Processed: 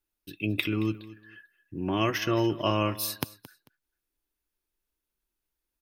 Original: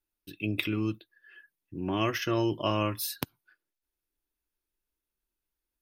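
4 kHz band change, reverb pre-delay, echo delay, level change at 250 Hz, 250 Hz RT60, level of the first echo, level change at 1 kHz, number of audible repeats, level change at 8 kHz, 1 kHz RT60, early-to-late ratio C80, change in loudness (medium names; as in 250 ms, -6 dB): +2.0 dB, no reverb, 222 ms, +2.0 dB, no reverb, -18.0 dB, +2.0 dB, 2, +2.0 dB, no reverb, no reverb, +2.0 dB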